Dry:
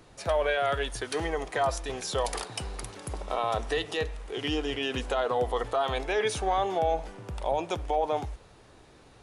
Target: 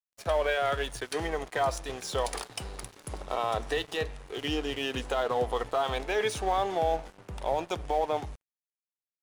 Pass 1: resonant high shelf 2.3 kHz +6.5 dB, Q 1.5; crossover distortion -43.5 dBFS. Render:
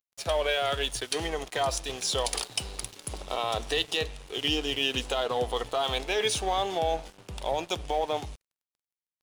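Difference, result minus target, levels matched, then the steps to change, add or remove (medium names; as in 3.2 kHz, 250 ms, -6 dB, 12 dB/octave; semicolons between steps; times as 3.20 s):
4 kHz band +6.5 dB
remove: resonant high shelf 2.3 kHz +6.5 dB, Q 1.5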